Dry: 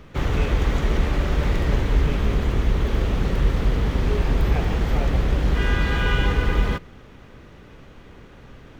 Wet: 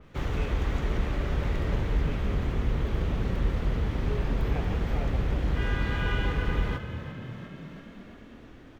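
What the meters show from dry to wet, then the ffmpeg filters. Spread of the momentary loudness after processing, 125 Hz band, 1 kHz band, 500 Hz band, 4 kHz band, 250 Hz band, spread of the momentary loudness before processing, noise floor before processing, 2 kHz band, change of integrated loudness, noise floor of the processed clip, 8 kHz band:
14 LU, -6.0 dB, -7.0 dB, -7.0 dB, -8.5 dB, -6.0 dB, 2 LU, -46 dBFS, -7.0 dB, -7.0 dB, -49 dBFS, n/a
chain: -filter_complex "[0:a]asplit=9[a][b][c][d][e][f][g][h][i];[b]adelay=345,afreqshift=37,volume=-11.5dB[j];[c]adelay=690,afreqshift=74,volume=-15.2dB[k];[d]adelay=1035,afreqshift=111,volume=-19dB[l];[e]adelay=1380,afreqshift=148,volume=-22.7dB[m];[f]adelay=1725,afreqshift=185,volume=-26.5dB[n];[g]adelay=2070,afreqshift=222,volume=-30.2dB[o];[h]adelay=2415,afreqshift=259,volume=-34dB[p];[i]adelay=2760,afreqshift=296,volume=-37.7dB[q];[a][j][k][l][m][n][o][p][q]amix=inputs=9:normalize=0,adynamicequalizer=threshold=0.00562:dfrequency=3600:dqfactor=0.7:tfrequency=3600:tqfactor=0.7:attack=5:release=100:ratio=0.375:range=2:mode=cutabove:tftype=highshelf,volume=-7.5dB"

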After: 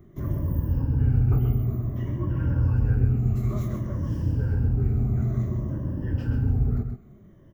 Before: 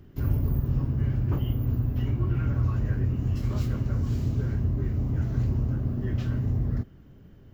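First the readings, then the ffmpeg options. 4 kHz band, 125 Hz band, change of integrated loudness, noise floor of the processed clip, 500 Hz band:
n/a, +2.0 dB, +2.0 dB, -50 dBFS, +2.0 dB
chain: -filter_complex "[0:a]afftfilt=real='re*pow(10,12/40*sin(2*PI*(1.2*log(max(b,1)*sr/1024/100)/log(2)-(-0.56)*(pts-256)/sr)))':imag='im*pow(10,12/40*sin(2*PI*(1.2*log(max(b,1)*sr/1024/100)/log(2)-(-0.56)*(pts-256)/sr)))':win_size=1024:overlap=0.75,equalizer=f=3.9k:w=0.79:g=-10.5,asplit=2[a][b];[b]aecho=0:1:130:0.422[c];[a][c]amix=inputs=2:normalize=0"

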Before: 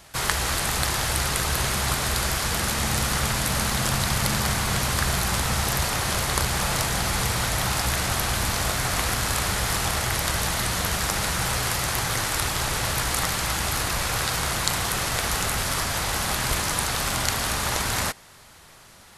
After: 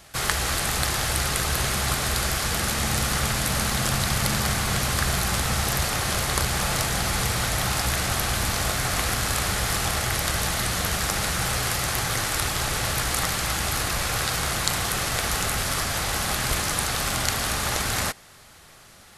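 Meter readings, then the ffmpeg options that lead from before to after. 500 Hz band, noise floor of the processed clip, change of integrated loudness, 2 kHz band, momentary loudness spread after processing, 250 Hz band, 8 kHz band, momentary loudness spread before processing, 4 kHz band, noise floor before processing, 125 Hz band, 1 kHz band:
0.0 dB, -50 dBFS, 0.0 dB, 0.0 dB, 1 LU, 0.0 dB, 0.0 dB, 1 LU, 0.0 dB, -49 dBFS, 0.0 dB, -1.0 dB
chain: -af "bandreject=f=960:w=12"

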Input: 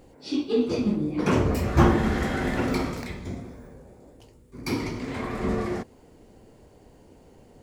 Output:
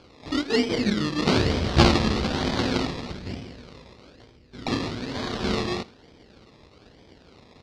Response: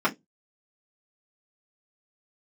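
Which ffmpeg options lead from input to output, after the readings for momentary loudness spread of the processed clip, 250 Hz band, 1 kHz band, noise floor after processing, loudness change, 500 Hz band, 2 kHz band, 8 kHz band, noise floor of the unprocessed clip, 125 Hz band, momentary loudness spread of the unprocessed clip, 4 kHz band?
16 LU, 0.0 dB, +1.5 dB, -54 dBFS, +1.5 dB, +0.5 dB, +3.0 dB, +4.5 dB, -54 dBFS, +0.5 dB, 16 LU, +11.0 dB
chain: -af "aeval=exprs='if(lt(val(0),0),0.447*val(0),val(0))':c=same,highpass=42,acrusher=samples=23:mix=1:aa=0.000001:lfo=1:lforange=13.8:lforate=1.1,lowpass=f=4.5k:t=q:w=2.6,aecho=1:1:81:0.1,volume=3dB"

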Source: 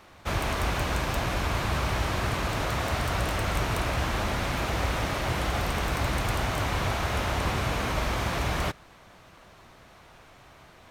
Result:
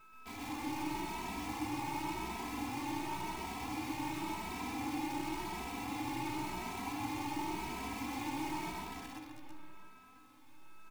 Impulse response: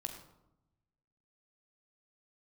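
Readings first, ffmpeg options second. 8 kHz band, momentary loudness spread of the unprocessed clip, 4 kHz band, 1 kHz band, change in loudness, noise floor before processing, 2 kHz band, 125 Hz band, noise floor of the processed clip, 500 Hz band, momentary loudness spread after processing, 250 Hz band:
-10.5 dB, 1 LU, -13.5 dB, -8.5 dB, -11.5 dB, -53 dBFS, -14.0 dB, -19.5 dB, -58 dBFS, -16.0 dB, 10 LU, -4.5 dB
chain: -filter_complex "[0:a]equalizer=f=630:t=o:w=0.35:g=3,aeval=exprs='val(0)+0.00398*(sin(2*PI*50*n/s)+sin(2*PI*2*50*n/s)/2+sin(2*PI*3*50*n/s)/3+sin(2*PI*4*50*n/s)/4+sin(2*PI*5*50*n/s)/5)':c=same,asplit=3[a][b][c];[a]bandpass=f=300:t=q:w=8,volume=0dB[d];[b]bandpass=f=870:t=q:w=8,volume=-6dB[e];[c]bandpass=f=2.24k:t=q:w=8,volume=-9dB[f];[d][e][f]amix=inputs=3:normalize=0,aeval=exprs='val(0)+0.00251*sin(2*PI*1300*n/s)':c=same,aecho=1:1:335|670|1005|1340|1675|2010|2345:0.531|0.292|0.161|0.0883|0.0486|0.0267|0.0147,acrusher=bits=8:dc=4:mix=0:aa=0.000001,asplit=2[g][h];[1:a]atrim=start_sample=2205,adelay=127[i];[h][i]afir=irnorm=-1:irlink=0,volume=2dB[j];[g][j]amix=inputs=2:normalize=0,asplit=2[k][l];[l]adelay=2.7,afreqshift=0.92[m];[k][m]amix=inputs=2:normalize=1"

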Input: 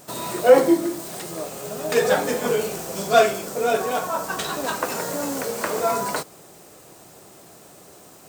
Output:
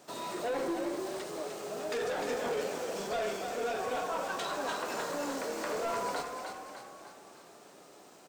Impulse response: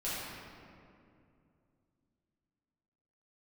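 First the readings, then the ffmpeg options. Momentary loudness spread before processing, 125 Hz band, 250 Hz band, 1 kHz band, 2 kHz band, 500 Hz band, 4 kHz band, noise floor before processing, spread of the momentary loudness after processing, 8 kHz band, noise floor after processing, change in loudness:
15 LU, -15.0 dB, -13.5 dB, -10.5 dB, -10.5 dB, -13.5 dB, -10.0 dB, -48 dBFS, 18 LU, -13.5 dB, -55 dBFS, -13.0 dB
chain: -filter_complex "[0:a]acrossover=split=200 6800:gain=0.224 1 0.251[a][b][c];[a][b][c]amix=inputs=3:normalize=0,alimiter=limit=-14dB:level=0:latency=1:release=55,asoftclip=type=tanh:threshold=-22dB,asplit=7[d][e][f][g][h][i][j];[e]adelay=302,afreqshift=41,volume=-6dB[k];[f]adelay=604,afreqshift=82,volume=-12dB[l];[g]adelay=906,afreqshift=123,volume=-18dB[m];[h]adelay=1208,afreqshift=164,volume=-24.1dB[n];[i]adelay=1510,afreqshift=205,volume=-30.1dB[o];[j]adelay=1812,afreqshift=246,volume=-36.1dB[p];[d][k][l][m][n][o][p]amix=inputs=7:normalize=0,asplit=2[q][r];[1:a]atrim=start_sample=2205[s];[r][s]afir=irnorm=-1:irlink=0,volume=-17dB[t];[q][t]amix=inputs=2:normalize=0,volume=-8dB"

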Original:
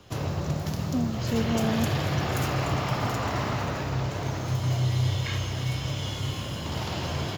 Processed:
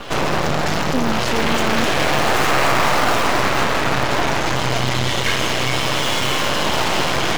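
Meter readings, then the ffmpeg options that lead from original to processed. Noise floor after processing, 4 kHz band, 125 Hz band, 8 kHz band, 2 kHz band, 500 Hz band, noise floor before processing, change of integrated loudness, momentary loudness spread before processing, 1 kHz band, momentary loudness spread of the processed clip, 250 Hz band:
-20 dBFS, +14.5 dB, +0.5 dB, +13.5 dB, +16.5 dB, +12.0 dB, -33 dBFS, +10.0 dB, 6 LU, +14.5 dB, 4 LU, +6.5 dB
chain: -filter_complex "[0:a]asplit=2[a][b];[b]highpass=f=720:p=1,volume=31dB,asoftclip=type=tanh:threshold=-13dB[c];[a][c]amix=inputs=2:normalize=0,lowpass=f=7k:p=1,volume=-6dB,afftfilt=real='re*gte(hypot(re,im),0.0251)':imag='im*gte(hypot(re,im),0.0251)':win_size=1024:overlap=0.75,acrossover=split=180|3000[d][e][f];[e]acontrast=74[g];[d][g][f]amix=inputs=3:normalize=0,bandreject=f=96.98:t=h:w=4,bandreject=f=193.96:t=h:w=4,bandreject=f=290.94:t=h:w=4,bandreject=f=387.92:t=h:w=4,bandreject=f=484.9:t=h:w=4,bandreject=f=581.88:t=h:w=4,bandreject=f=678.86:t=h:w=4,bandreject=f=775.84:t=h:w=4,bandreject=f=872.82:t=h:w=4,bandreject=f=969.8:t=h:w=4,bandreject=f=1.06678k:t=h:w=4,bandreject=f=1.16376k:t=h:w=4,bandreject=f=1.26074k:t=h:w=4,bandreject=f=1.35772k:t=h:w=4,asplit=2[h][i];[i]acrusher=samples=38:mix=1:aa=0.000001:lfo=1:lforange=60.8:lforate=0.28,volume=-8dB[j];[h][j]amix=inputs=2:normalize=0,aeval=exprs='max(val(0),0)':c=same"

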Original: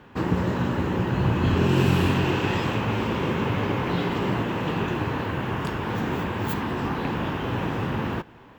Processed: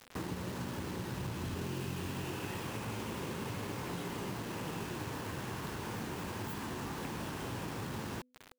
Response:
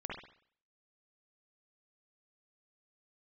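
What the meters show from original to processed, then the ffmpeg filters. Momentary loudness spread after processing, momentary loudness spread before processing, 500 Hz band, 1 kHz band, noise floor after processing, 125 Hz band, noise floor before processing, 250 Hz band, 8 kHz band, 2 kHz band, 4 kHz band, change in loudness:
1 LU, 7 LU, -15.0 dB, -14.0 dB, -56 dBFS, -16.0 dB, -48 dBFS, -15.5 dB, -0.5 dB, -14.0 dB, -11.0 dB, -14.5 dB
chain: -af "acompressor=threshold=-35dB:ratio=4,acrusher=bits=6:mix=0:aa=0.000001,bandreject=f=250.4:t=h:w=4,bandreject=f=500.8:t=h:w=4,volume=-4dB"

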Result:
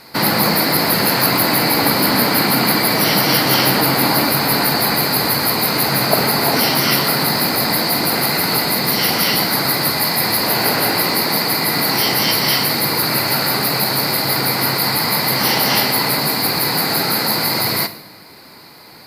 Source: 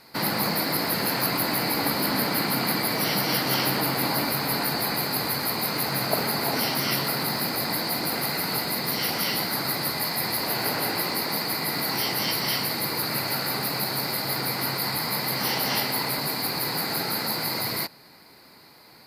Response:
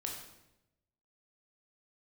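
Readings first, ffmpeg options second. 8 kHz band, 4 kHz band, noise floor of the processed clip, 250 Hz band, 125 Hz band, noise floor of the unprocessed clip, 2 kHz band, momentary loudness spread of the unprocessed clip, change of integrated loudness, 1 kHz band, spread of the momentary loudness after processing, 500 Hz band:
+10.0 dB, +10.0 dB, -41 dBFS, +10.0 dB, +9.5 dB, -51 dBFS, +10.0 dB, 2 LU, +10.0 dB, +10.0 dB, 2 LU, +10.0 dB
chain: -filter_complex "[0:a]acontrast=50,asplit=2[a][b];[1:a]atrim=start_sample=2205,adelay=47[c];[b][c]afir=irnorm=-1:irlink=0,volume=-12dB[d];[a][d]amix=inputs=2:normalize=0,volume=4dB"

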